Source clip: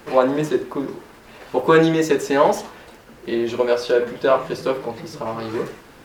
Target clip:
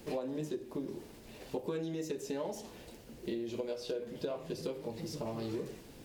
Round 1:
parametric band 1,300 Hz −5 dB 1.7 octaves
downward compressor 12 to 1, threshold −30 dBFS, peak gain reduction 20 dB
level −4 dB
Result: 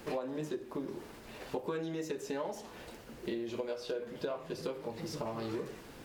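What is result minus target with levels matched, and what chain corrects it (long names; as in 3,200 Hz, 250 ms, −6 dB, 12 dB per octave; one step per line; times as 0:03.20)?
1,000 Hz band +4.0 dB
parametric band 1,300 Hz −15 dB 1.7 octaves
downward compressor 12 to 1, threshold −30 dBFS, peak gain reduction 17.5 dB
level −4 dB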